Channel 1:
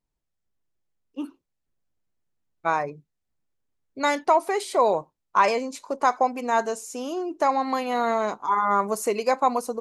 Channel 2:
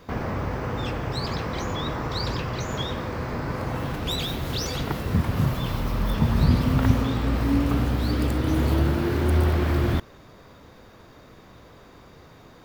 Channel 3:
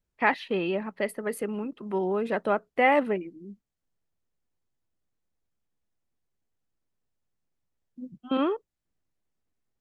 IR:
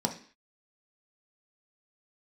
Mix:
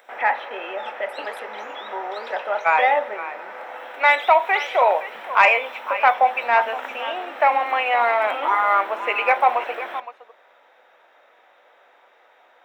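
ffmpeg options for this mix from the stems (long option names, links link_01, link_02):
-filter_complex "[0:a]lowpass=frequency=2600:width_type=q:width=3.9,volume=-3dB,asplit=3[link_01][link_02][link_03];[link_02]volume=-13.5dB[link_04];[link_03]volume=-12.5dB[link_05];[1:a]volume=-9.5dB,asplit=2[link_06][link_07];[link_07]volume=-11dB[link_08];[2:a]acompressor=mode=upward:threshold=-24dB:ratio=2.5,volume=-9dB,asplit=2[link_09][link_10];[link_10]volume=-5dB[link_11];[3:a]atrim=start_sample=2205[link_12];[link_04][link_08][link_11]amix=inputs=3:normalize=0[link_13];[link_13][link_12]afir=irnorm=-1:irlink=0[link_14];[link_05]aecho=0:1:516:1[link_15];[link_01][link_06][link_09][link_14][link_15]amix=inputs=5:normalize=0,highpass=frequency=610:width=0.5412,highpass=frequency=610:width=1.3066,highshelf=frequency=3800:width_type=q:width=1.5:gain=-11,acontrast=32"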